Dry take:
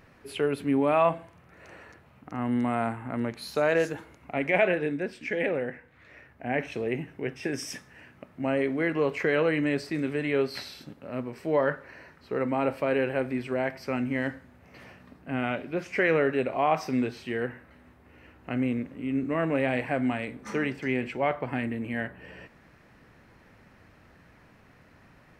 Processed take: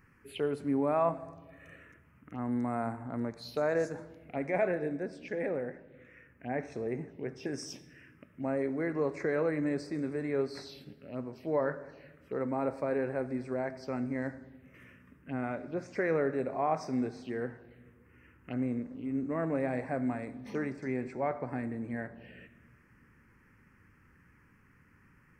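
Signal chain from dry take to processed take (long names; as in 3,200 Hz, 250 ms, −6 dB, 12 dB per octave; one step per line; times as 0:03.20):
0:01.18–0:01.76: comb filter 1.7 ms, depth 76%
phaser swept by the level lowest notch 600 Hz, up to 3,000 Hz, full sweep at −29.5 dBFS
on a send: convolution reverb RT60 1.4 s, pre-delay 71 ms, DRR 17 dB
on the sum: level −5 dB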